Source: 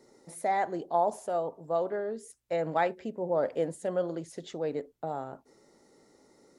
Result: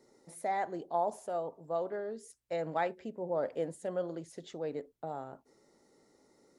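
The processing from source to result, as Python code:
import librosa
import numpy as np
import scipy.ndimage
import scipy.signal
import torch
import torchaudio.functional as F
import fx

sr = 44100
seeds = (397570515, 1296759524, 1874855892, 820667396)

y = fx.dynamic_eq(x, sr, hz=5000.0, q=1.4, threshold_db=-60.0, ratio=4.0, max_db=5, at=(1.86, 2.65))
y = F.gain(torch.from_numpy(y), -5.0).numpy()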